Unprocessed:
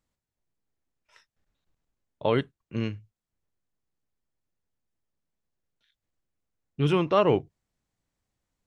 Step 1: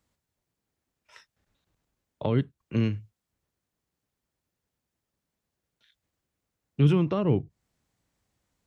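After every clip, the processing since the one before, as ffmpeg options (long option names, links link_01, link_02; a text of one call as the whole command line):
ffmpeg -i in.wav -filter_complex "[0:a]highpass=44,acrossover=split=270[link_01][link_02];[link_02]acompressor=threshold=-37dB:ratio=6[link_03];[link_01][link_03]amix=inputs=2:normalize=0,volume=6dB" out.wav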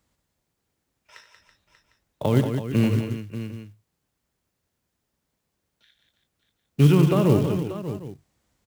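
ffmpeg -i in.wav -af "aecho=1:1:75|93|183|329|587|753:0.211|0.237|0.422|0.251|0.251|0.119,acrusher=bits=6:mode=log:mix=0:aa=0.000001,volume=4.5dB" out.wav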